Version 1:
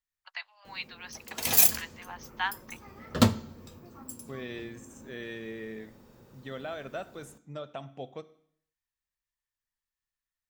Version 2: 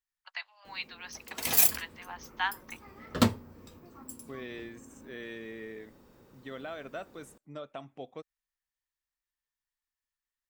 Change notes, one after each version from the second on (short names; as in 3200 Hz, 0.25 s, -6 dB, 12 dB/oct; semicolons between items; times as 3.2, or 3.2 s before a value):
reverb: off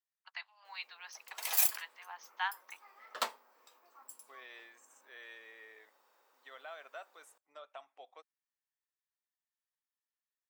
master: add ladder high-pass 610 Hz, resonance 25%